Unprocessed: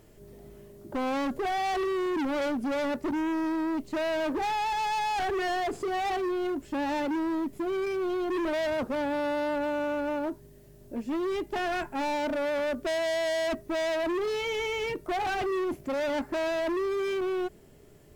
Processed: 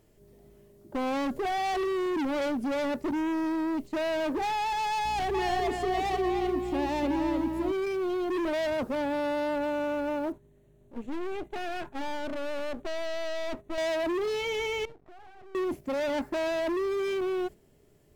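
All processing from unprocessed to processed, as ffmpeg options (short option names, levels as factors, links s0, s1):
-filter_complex "[0:a]asettb=1/sr,asplit=3[s0][s1][s2];[s0]atrim=end=5.044[s3];[s1]atrim=start=5.04:end=7.72,asetpts=PTS-STARTPTS,afade=t=in:d=0.004:c=qsin,afade=t=out:st=2.676:d=0.004:c=qsin,equalizer=f=1500:w=4.5:g=-6.5,asplit=2[s4][s5];[s5]adelay=302,lowpass=f=4100:p=1,volume=0.631,asplit=2[s6][s7];[s7]adelay=302,lowpass=f=4100:p=1,volume=0.3,asplit=2[s8][s9];[s9]adelay=302,lowpass=f=4100:p=1,volume=0.3,asplit=2[s10][s11];[s11]adelay=302,lowpass=f=4100:p=1,volume=0.3[s12];[s4][s6][s8][s10][s12]amix=inputs=5:normalize=0,atrim=end_sample=118188,aeval=exprs='val(0)+0.00794*(sin(2*PI*60*n/s)+sin(2*PI*2*60*n/s)/2+sin(2*PI*3*60*n/s)/3+sin(2*PI*4*60*n/s)/4+sin(2*PI*5*60*n/s)/5)':c=same[s13];[s2]atrim=start=7.716[s14];[s3][s13]acrossfade=d=0.004:c1=hsin:c2=qsin[s15];[s15][s14]acrossfade=d=0.004:c1=qsin:c2=hsin,asettb=1/sr,asplit=3[s16][s17][s18];[s16]atrim=end=10.324[s19];[s17]atrim=start=10.32:end=13.78,asetpts=PTS-STARTPTS,afade=t=in:d=0.004:c=qsin,afade=t=out:st=3.456:d=0.004:c=qsin,asuperstop=centerf=5000:order=4:qfactor=2.7,aemphasis=mode=reproduction:type=50kf,aeval=exprs='clip(val(0),-1,0.00398)':c=same[s20];[s18]atrim=start=13.776[s21];[s19][s20]acrossfade=d=0.004:c1=hsin:c2=qsin[s22];[s22][s21]acrossfade=d=0.004:c1=qsin:c2=hsin,asettb=1/sr,asplit=3[s23][s24][s25];[s23]atrim=end=14.854[s26];[s24]atrim=start=14.85:end=15.55,asetpts=PTS-STARTPTS,afade=t=in:d=0.004:c=qsin,afade=t=out:st=0.696:d=0.004:c=qsin,acompressor=threshold=0.0126:ratio=6:attack=3.2:release=140:knee=1:detection=peak,lowpass=1200,aeval=exprs='max(val(0),0)':c=same[s27];[s25]atrim=start=15.546[s28];[s26][s27]acrossfade=d=0.004:c1=hsin:c2=qsin[s29];[s29][s28]acrossfade=d=0.004:c1=qsin:c2=hsin,agate=range=0.447:threshold=0.0112:ratio=16:detection=peak,equalizer=f=1400:t=o:w=0.77:g=-2"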